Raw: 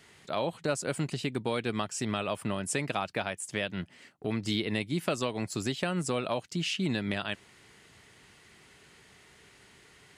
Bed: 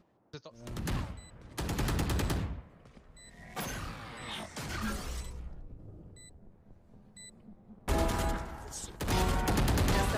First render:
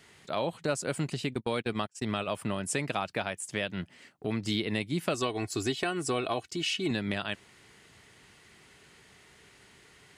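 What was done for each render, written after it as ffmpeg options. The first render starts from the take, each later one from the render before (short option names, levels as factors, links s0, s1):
-filter_complex "[0:a]asplit=3[s0][s1][s2];[s0]afade=t=out:st=1.33:d=0.02[s3];[s1]agate=range=0.0282:threshold=0.0178:ratio=16:release=100:detection=peak,afade=t=in:st=1.33:d=0.02,afade=t=out:st=2.27:d=0.02[s4];[s2]afade=t=in:st=2.27:d=0.02[s5];[s3][s4][s5]amix=inputs=3:normalize=0,asettb=1/sr,asplit=3[s6][s7][s8];[s6]atrim=end=5.144[s9];[s7]atrim=start=5.14:end=6.91,asetpts=PTS-STARTPTS,afade=t=in:d=0.004:c=qsin,afade=t=out:st=1.766:d=0.004:c=qsin,aecho=1:1:2.7:0.65,atrim=end_sample=78057[s10];[s8]atrim=start=6.906[s11];[s9][s10]acrossfade=d=0.004:c1=hsin:c2=qsin[s12];[s12][s11]acrossfade=d=0.004:c1=qsin:c2=hsin"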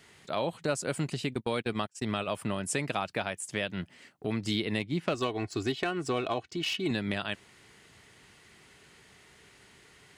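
-filter_complex "[0:a]asettb=1/sr,asplit=3[s0][s1][s2];[s0]atrim=end=4.794[s3];[s1]atrim=start=4.79:end=6.86,asetpts=PTS-STARTPTS,afade=t=in:d=0.004:c=qsin,afade=t=out:st=2.066:d=0.004:c=qsin,adynamicsmooth=sensitivity=4:basefreq=4200[s4];[s2]atrim=start=6.856[s5];[s3][s4]acrossfade=d=0.004:c1=hsin:c2=qsin[s6];[s6][s5]acrossfade=d=0.004:c1=qsin:c2=hsin"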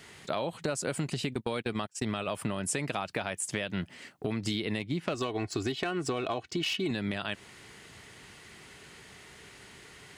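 -filter_complex "[0:a]asplit=2[s0][s1];[s1]alimiter=level_in=1.06:limit=0.0631:level=0:latency=1,volume=0.944,volume=1[s2];[s0][s2]amix=inputs=2:normalize=0,acompressor=threshold=0.0398:ratio=6"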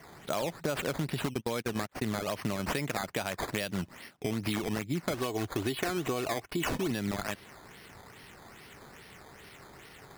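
-af "acrusher=samples=11:mix=1:aa=0.000001:lfo=1:lforange=11:lforate=2.4"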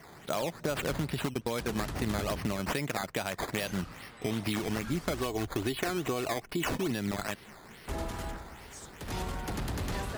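-filter_complex "[1:a]volume=0.473[s0];[0:a][s0]amix=inputs=2:normalize=0"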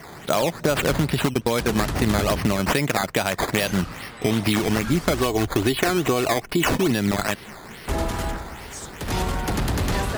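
-af "volume=3.55"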